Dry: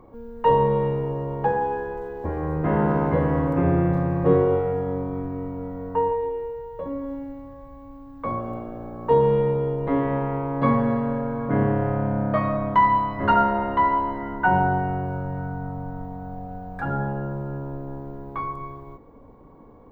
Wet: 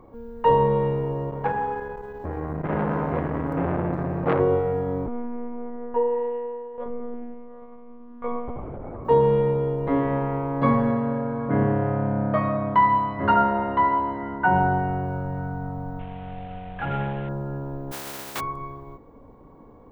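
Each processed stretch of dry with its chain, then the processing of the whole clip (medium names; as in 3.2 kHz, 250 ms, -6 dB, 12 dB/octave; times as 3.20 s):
1.30–4.40 s: de-hum 49.31 Hz, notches 18 + transformer saturation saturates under 960 Hz
5.06–9.05 s: low-pass 3 kHz + monotone LPC vocoder at 8 kHz 240 Hz
10.91–14.56 s: high-pass 58 Hz + distance through air 97 m
15.99–17.29 s: CVSD coder 16 kbps + peaking EQ 280 Hz -6 dB 0.43 oct
17.91–18.39 s: spectral contrast reduction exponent 0.26 + high-pass 180 Hz 6 dB/octave
whole clip: none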